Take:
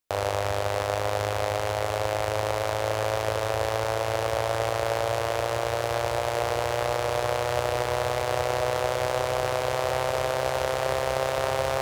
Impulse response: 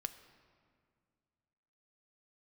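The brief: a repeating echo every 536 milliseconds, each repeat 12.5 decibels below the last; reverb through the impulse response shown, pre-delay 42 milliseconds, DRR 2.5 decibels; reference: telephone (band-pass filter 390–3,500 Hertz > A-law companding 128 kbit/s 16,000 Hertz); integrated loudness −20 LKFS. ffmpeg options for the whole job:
-filter_complex "[0:a]aecho=1:1:536|1072|1608:0.237|0.0569|0.0137,asplit=2[link_01][link_02];[1:a]atrim=start_sample=2205,adelay=42[link_03];[link_02][link_03]afir=irnorm=-1:irlink=0,volume=-0.5dB[link_04];[link_01][link_04]amix=inputs=2:normalize=0,highpass=390,lowpass=3500,volume=6dB" -ar 16000 -c:a pcm_alaw

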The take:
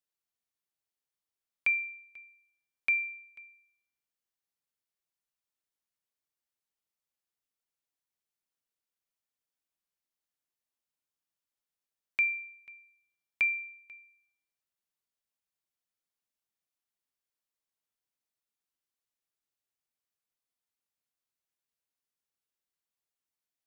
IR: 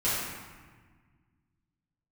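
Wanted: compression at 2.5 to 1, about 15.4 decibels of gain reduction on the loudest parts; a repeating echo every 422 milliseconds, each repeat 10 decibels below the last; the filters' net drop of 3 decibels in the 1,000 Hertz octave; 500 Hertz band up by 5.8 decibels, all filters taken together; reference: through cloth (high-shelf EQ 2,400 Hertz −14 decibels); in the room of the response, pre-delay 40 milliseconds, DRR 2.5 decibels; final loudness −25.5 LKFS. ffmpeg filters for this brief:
-filter_complex "[0:a]equalizer=frequency=500:width_type=o:gain=9,equalizer=frequency=1000:width_type=o:gain=-3.5,acompressor=threshold=-48dB:ratio=2.5,aecho=1:1:422|844|1266|1688:0.316|0.101|0.0324|0.0104,asplit=2[link_01][link_02];[1:a]atrim=start_sample=2205,adelay=40[link_03];[link_02][link_03]afir=irnorm=-1:irlink=0,volume=-13.5dB[link_04];[link_01][link_04]amix=inputs=2:normalize=0,highshelf=frequency=2400:gain=-14,volume=24dB"

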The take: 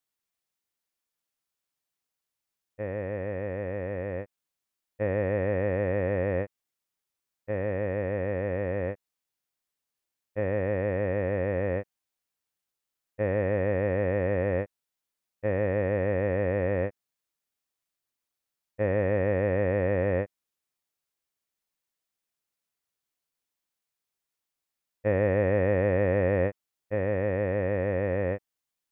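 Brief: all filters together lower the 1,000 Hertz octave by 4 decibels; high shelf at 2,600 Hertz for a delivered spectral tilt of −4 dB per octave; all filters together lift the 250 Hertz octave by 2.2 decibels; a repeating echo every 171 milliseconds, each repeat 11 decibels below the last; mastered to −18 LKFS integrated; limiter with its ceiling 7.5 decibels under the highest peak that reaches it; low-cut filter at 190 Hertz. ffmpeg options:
ffmpeg -i in.wav -af "highpass=190,equalizer=frequency=250:width_type=o:gain=5.5,equalizer=frequency=1000:width_type=o:gain=-8,highshelf=frequency=2600:gain=8.5,alimiter=limit=-21.5dB:level=0:latency=1,aecho=1:1:171|342|513:0.282|0.0789|0.0221,volume=14.5dB" out.wav

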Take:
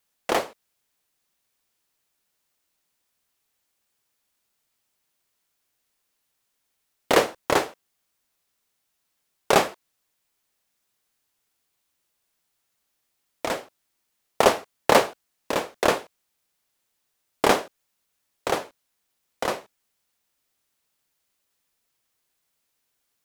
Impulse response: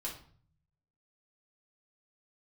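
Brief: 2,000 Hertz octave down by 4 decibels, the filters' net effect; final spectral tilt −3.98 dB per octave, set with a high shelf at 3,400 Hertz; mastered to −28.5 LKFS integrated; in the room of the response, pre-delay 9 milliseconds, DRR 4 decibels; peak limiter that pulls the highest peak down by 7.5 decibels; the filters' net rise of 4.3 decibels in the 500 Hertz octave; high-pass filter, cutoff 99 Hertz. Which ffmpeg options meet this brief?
-filter_complex "[0:a]highpass=99,equalizer=frequency=500:width_type=o:gain=5.5,equalizer=frequency=2000:width_type=o:gain=-4,highshelf=frequency=3400:gain=-5,alimiter=limit=-7dB:level=0:latency=1,asplit=2[link_01][link_02];[1:a]atrim=start_sample=2205,adelay=9[link_03];[link_02][link_03]afir=irnorm=-1:irlink=0,volume=-4.5dB[link_04];[link_01][link_04]amix=inputs=2:normalize=0,volume=-4.5dB"

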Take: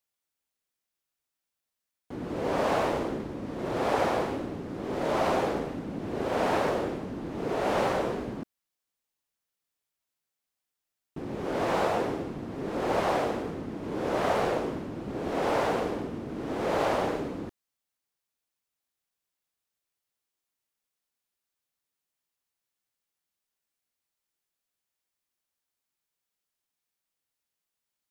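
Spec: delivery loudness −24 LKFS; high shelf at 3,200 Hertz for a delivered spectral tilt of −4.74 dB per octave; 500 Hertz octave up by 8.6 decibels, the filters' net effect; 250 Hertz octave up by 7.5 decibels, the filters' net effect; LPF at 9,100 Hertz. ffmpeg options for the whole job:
ffmpeg -i in.wav -af "lowpass=9100,equalizer=frequency=250:width_type=o:gain=6.5,equalizer=frequency=500:width_type=o:gain=8.5,highshelf=frequency=3200:gain=8.5,volume=-1dB" out.wav

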